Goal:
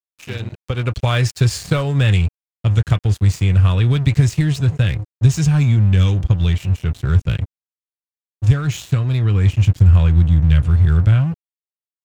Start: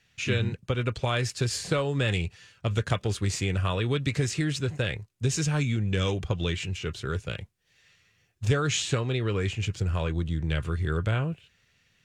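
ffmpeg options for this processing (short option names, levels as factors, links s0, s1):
-af "asubboost=boost=7:cutoff=150,dynaudnorm=f=120:g=13:m=6.31,aeval=exprs='sgn(val(0))*max(abs(val(0))-0.0266,0)':c=same,volume=0.891"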